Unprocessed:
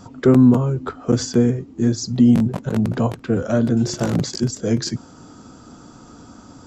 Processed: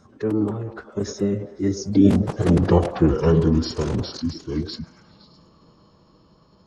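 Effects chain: Doppler pass-by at 2.77 s, 38 m/s, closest 20 m; repeats whose band climbs or falls 103 ms, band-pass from 530 Hz, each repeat 0.7 oct, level -6 dB; formant-preserving pitch shift -5 st; trim +4 dB

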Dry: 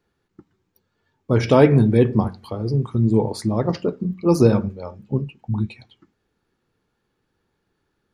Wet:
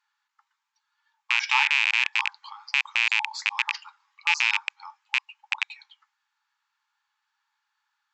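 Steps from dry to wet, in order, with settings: rattle on loud lows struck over -18 dBFS, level -7 dBFS; dynamic bell 1.3 kHz, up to -6 dB, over -38 dBFS, Q 2.3; brick-wall FIR band-pass 800–7900 Hz

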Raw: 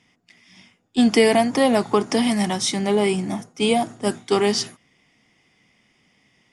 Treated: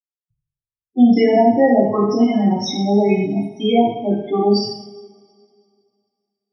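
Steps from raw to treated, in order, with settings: bit crusher 6-bit; loudest bins only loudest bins 8; two-slope reverb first 0.73 s, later 2.4 s, from -22 dB, DRR -6.5 dB; trim -1.5 dB

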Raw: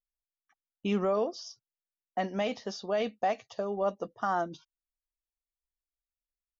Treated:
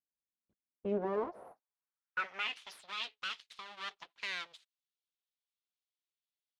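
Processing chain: full-wave rectifier; band-pass sweep 210 Hz -> 3.5 kHz, 0.59–2.71 s; trim +6 dB

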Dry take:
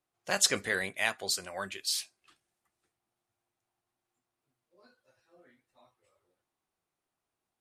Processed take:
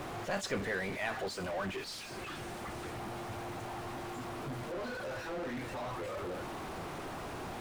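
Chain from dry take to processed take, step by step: jump at every zero crossing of -25 dBFS; low-pass 1.2 kHz 6 dB/octave; trim -5.5 dB

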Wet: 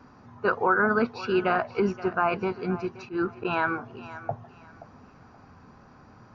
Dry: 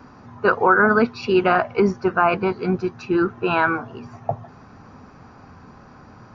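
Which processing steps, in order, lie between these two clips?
2.91–3.45 s: slow attack 109 ms; resampled via 16 kHz; thinning echo 526 ms, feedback 27%, level -15 dB; trim -7 dB

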